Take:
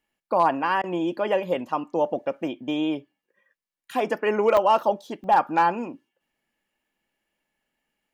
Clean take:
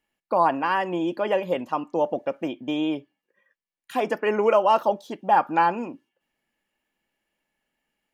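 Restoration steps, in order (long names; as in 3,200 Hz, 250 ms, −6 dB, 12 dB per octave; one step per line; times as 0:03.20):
clipped peaks rebuilt −10.5 dBFS
repair the gap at 0:04.57/0:05.24, 2.1 ms
repair the gap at 0:00.82, 15 ms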